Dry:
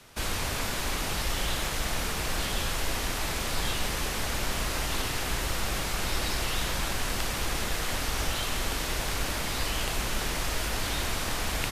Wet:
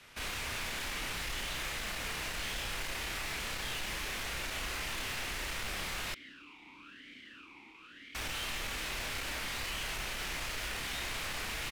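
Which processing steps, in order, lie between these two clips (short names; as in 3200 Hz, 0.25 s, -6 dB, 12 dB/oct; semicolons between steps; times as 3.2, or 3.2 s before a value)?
bell 2300 Hz +9.5 dB 1.6 oct; overloaded stage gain 28.5 dB; doubler 31 ms -4.5 dB; 6.14–8.15 vowel sweep i-u 1 Hz; gain -8.5 dB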